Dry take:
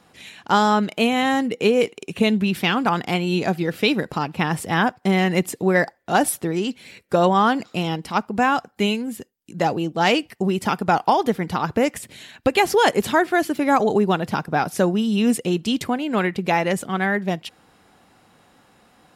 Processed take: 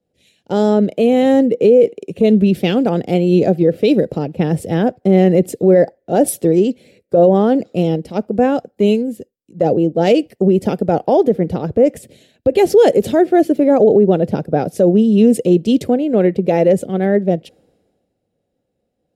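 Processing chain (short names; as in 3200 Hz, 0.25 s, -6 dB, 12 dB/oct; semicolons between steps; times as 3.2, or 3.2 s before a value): resonant low shelf 750 Hz +11.5 dB, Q 3; maximiser -0.5 dB; three-band expander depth 70%; gain -3 dB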